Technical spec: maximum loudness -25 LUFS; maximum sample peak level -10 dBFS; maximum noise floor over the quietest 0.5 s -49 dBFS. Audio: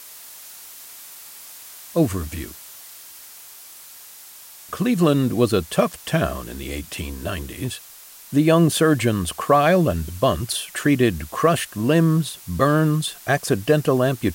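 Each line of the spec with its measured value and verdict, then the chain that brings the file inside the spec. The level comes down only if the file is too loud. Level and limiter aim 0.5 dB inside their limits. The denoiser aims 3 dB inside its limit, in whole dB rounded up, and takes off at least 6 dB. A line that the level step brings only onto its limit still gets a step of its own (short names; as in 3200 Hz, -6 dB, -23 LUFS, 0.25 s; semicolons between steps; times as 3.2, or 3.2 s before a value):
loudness -20.5 LUFS: fail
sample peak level -5.5 dBFS: fail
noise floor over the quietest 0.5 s -44 dBFS: fail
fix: denoiser 6 dB, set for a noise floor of -44 dBFS; gain -5 dB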